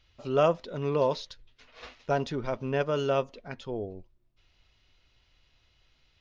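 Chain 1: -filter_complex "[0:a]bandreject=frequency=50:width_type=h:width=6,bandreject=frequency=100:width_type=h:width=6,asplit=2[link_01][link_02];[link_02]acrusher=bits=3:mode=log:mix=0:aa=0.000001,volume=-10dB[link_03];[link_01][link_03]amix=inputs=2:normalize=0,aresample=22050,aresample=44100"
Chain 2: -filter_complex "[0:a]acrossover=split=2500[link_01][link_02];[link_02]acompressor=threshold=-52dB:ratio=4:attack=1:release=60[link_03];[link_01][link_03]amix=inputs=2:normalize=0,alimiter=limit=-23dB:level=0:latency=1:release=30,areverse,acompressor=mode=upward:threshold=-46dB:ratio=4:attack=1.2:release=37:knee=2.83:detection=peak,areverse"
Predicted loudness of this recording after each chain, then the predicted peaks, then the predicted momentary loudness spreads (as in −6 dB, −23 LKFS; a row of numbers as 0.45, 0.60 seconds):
−27.5, −34.5 LKFS; −9.0, −23.0 dBFS; 18, 17 LU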